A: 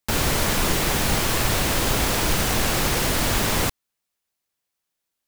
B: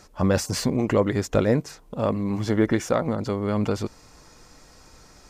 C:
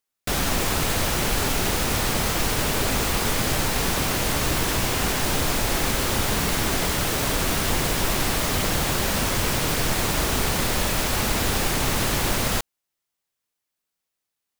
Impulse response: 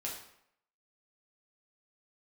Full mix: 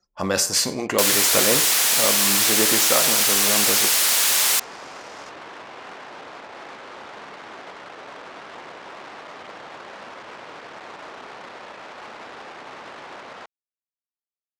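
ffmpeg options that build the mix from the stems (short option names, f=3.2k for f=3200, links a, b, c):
-filter_complex "[0:a]highpass=f=1k:p=1,aeval=exprs='clip(val(0),-1,0.0501)':c=same,adelay=900,volume=1dB[a];[1:a]volume=-1dB,asplit=2[b][c];[c]volume=-6dB[d];[2:a]lowpass=1.1k,aemphasis=mode=production:type=riaa,adelay=850,volume=-7dB[e];[3:a]atrim=start_sample=2205[f];[d][f]afir=irnorm=-1:irlink=0[g];[a][b][e][g]amix=inputs=4:normalize=0,highpass=f=490:p=1,anlmdn=0.158,equalizer=f=10k:t=o:w=3:g=10"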